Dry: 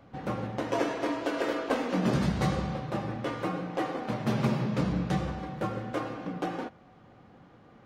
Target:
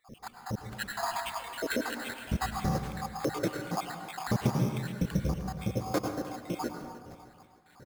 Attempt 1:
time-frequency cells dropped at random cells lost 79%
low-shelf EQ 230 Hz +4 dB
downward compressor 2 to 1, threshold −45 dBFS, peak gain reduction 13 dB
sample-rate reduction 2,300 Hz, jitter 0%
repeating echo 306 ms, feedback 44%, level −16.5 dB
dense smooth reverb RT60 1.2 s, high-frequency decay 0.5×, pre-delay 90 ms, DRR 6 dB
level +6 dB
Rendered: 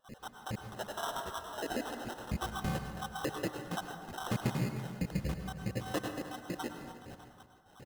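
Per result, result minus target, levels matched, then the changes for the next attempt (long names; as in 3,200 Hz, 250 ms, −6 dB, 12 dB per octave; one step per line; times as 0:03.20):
downward compressor: peak gain reduction +5 dB; sample-rate reduction: distortion +7 dB
change: downward compressor 2 to 1, threshold −34.5 dBFS, peak gain reduction 8 dB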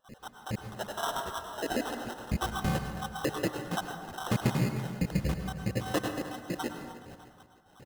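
sample-rate reduction: distortion +6 dB
change: sample-rate reduction 5,800 Hz, jitter 0%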